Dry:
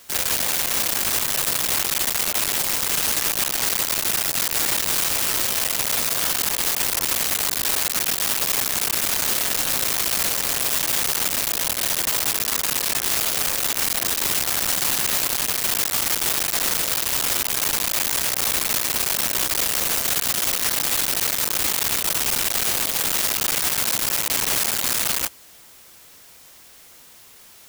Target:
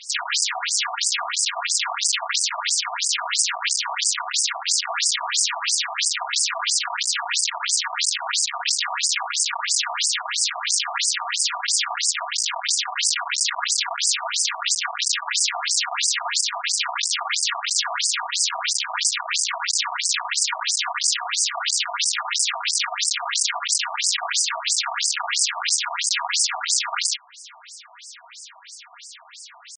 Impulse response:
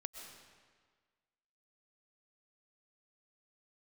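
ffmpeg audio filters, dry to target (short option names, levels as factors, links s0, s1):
-filter_complex "[0:a]atempo=0.93,asplit=2[s0][s1];[s1]acompressor=threshold=0.0126:ratio=6,volume=1.06[s2];[s0][s2]amix=inputs=2:normalize=0,aecho=1:1:4.2:0.59,afftfilt=real='re*between(b*sr/1024,850*pow(6800/850,0.5+0.5*sin(2*PI*3*pts/sr))/1.41,850*pow(6800/850,0.5+0.5*sin(2*PI*3*pts/sr))*1.41)':imag='im*between(b*sr/1024,850*pow(6800/850,0.5+0.5*sin(2*PI*3*pts/sr))/1.41,850*pow(6800/850,0.5+0.5*sin(2*PI*3*pts/sr))*1.41)':win_size=1024:overlap=0.75,volume=2.11"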